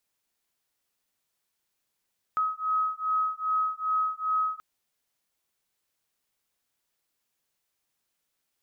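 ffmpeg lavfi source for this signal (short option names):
-f lavfi -i "aevalsrc='0.0398*(sin(2*PI*1270*t)+sin(2*PI*1272.5*t))':d=2.23:s=44100"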